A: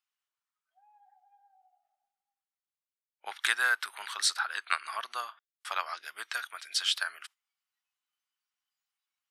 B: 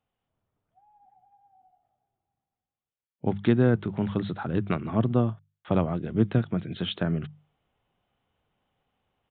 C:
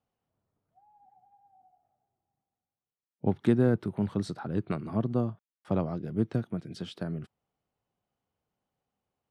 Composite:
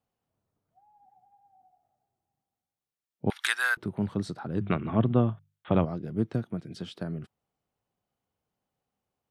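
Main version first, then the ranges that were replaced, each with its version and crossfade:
C
3.3–3.77 from A
4.61–5.85 from B

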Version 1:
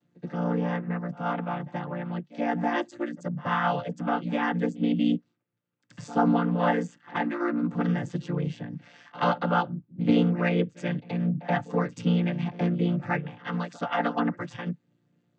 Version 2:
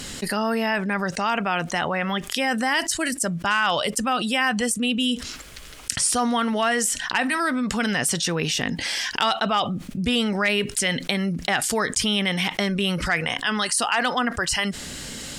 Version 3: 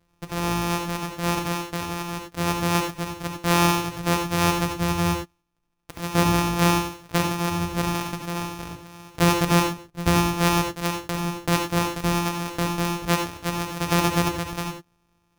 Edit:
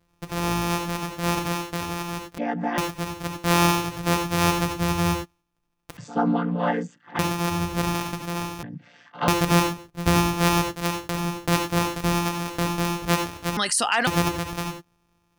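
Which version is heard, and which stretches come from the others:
3
2.38–2.78 from 1
5.97–7.19 from 1
8.63–9.28 from 1
13.57–14.07 from 2

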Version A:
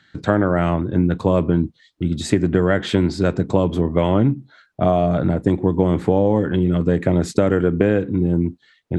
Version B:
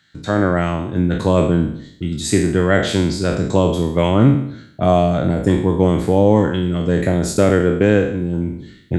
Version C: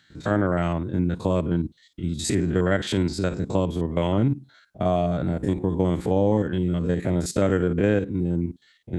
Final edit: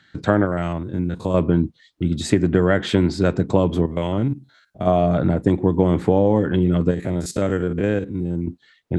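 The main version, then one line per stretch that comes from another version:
A
0.45–1.34 from C
3.86–4.87 from C
6.91–8.47 from C
not used: B

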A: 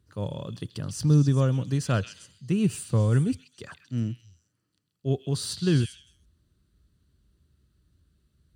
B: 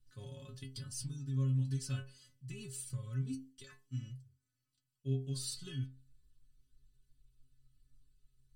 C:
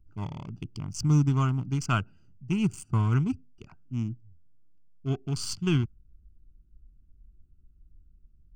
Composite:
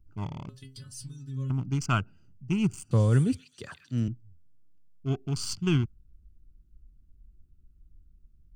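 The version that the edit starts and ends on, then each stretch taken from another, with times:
C
0.49–1.5 from B
2.91–4.08 from A

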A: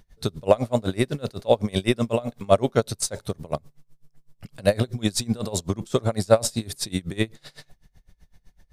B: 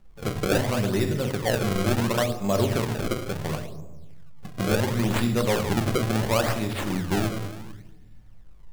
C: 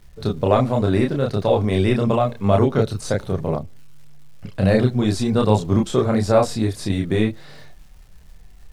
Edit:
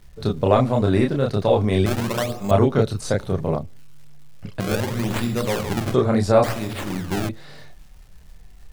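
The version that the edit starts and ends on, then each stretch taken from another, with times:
C
1.86–2.51 from B
4.6–5.94 from B
6.44–7.29 from B
not used: A

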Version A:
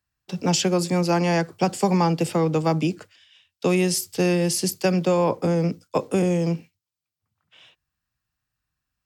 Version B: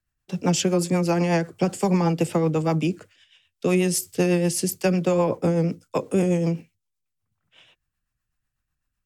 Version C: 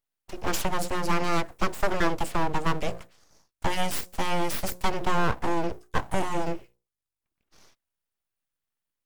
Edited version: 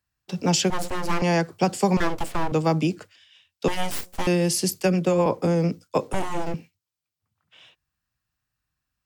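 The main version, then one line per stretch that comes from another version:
A
0.7–1.22 from C
1.97–2.52 from C
3.68–4.27 from C
4.8–5.26 from B
6.13–6.54 from C

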